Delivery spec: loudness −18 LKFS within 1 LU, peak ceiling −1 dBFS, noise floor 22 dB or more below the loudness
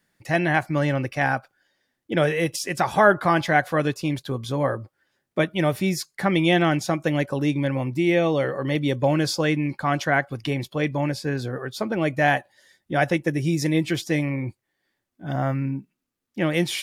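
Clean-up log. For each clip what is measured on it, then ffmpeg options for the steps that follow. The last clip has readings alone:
integrated loudness −23.5 LKFS; sample peak −4.0 dBFS; target loudness −18.0 LKFS
→ -af "volume=5.5dB,alimiter=limit=-1dB:level=0:latency=1"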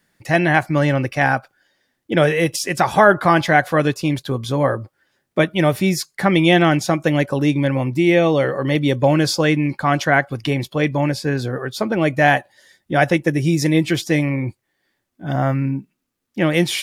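integrated loudness −18.0 LKFS; sample peak −1.0 dBFS; background noise floor −75 dBFS

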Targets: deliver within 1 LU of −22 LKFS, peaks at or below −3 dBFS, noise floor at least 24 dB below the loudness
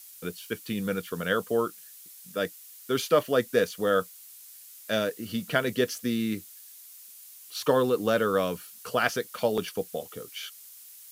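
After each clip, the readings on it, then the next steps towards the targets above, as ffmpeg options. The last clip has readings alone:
background noise floor −49 dBFS; target noise floor −53 dBFS; integrated loudness −28.5 LKFS; sample peak −8.0 dBFS; target loudness −22.0 LKFS
→ -af "afftdn=noise_reduction=6:noise_floor=-49"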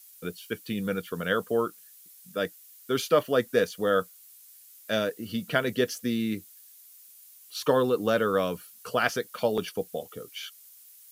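background noise floor −53 dBFS; integrated loudness −28.5 LKFS; sample peak −8.0 dBFS; target loudness −22.0 LKFS
→ -af "volume=6.5dB,alimiter=limit=-3dB:level=0:latency=1"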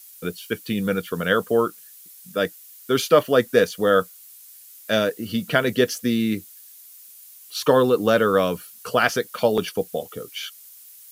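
integrated loudness −22.0 LKFS; sample peak −3.0 dBFS; background noise floor −46 dBFS

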